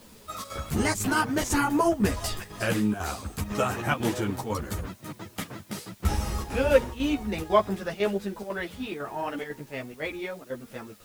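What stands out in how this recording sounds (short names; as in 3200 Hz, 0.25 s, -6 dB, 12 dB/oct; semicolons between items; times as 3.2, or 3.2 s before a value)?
chopped level 2 Hz, depth 65%, duty 85%; a quantiser's noise floor 10-bit, dither triangular; a shimmering, thickened sound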